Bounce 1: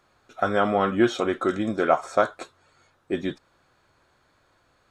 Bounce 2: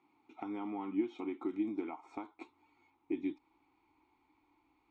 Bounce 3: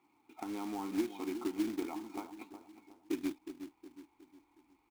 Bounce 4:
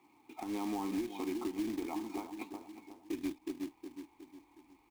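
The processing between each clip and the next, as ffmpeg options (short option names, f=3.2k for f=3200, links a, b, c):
-filter_complex "[0:a]acompressor=threshold=-29dB:ratio=6,asubboost=boost=10.5:cutoff=52,asplit=3[a][b][c];[a]bandpass=f=300:t=q:w=8,volume=0dB[d];[b]bandpass=f=870:t=q:w=8,volume=-6dB[e];[c]bandpass=f=2.24k:t=q:w=8,volume=-9dB[f];[d][e][f]amix=inputs=3:normalize=0,volume=6dB"
-filter_complex "[0:a]asplit=2[a][b];[b]adelay=364,lowpass=f=1.1k:p=1,volume=-9.5dB,asplit=2[c][d];[d]adelay=364,lowpass=f=1.1k:p=1,volume=0.45,asplit=2[e][f];[f]adelay=364,lowpass=f=1.1k:p=1,volume=0.45,asplit=2[g][h];[h]adelay=364,lowpass=f=1.1k:p=1,volume=0.45,asplit=2[i][j];[j]adelay=364,lowpass=f=1.1k:p=1,volume=0.45[k];[c][e][g][i][k]amix=inputs=5:normalize=0[l];[a][l]amix=inputs=2:normalize=0,acrusher=bits=3:mode=log:mix=0:aa=0.000001"
-filter_complex "[0:a]acrossover=split=100[a][b];[b]alimiter=level_in=9.5dB:limit=-24dB:level=0:latency=1:release=231,volume=-9.5dB[c];[a][c]amix=inputs=2:normalize=0,bandreject=f=1.4k:w=5.6,volume=6dB"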